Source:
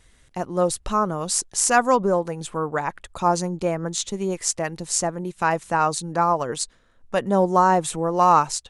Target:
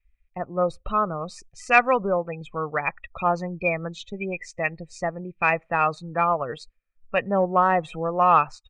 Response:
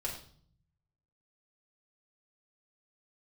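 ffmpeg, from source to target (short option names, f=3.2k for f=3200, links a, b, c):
-filter_complex "[0:a]aecho=1:1:1.6:0.34,asplit=2[a][b];[1:a]atrim=start_sample=2205,asetrate=88200,aresample=44100[c];[b][c]afir=irnorm=-1:irlink=0,volume=-23.5dB[d];[a][d]amix=inputs=2:normalize=0,afftdn=nr=29:nf=-34,lowpass=f=2.4k:t=q:w=14,aeval=exprs='1.12*(cos(1*acos(clip(val(0)/1.12,-1,1)))-cos(1*PI/2))+0.0631*(cos(3*acos(clip(val(0)/1.12,-1,1)))-cos(3*PI/2))':c=same,volume=-2.5dB"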